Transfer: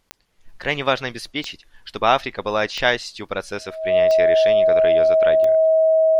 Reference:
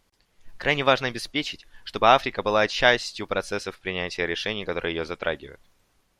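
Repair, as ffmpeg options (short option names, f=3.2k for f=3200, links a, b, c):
-af "adeclick=t=4,bandreject=f=640:w=30"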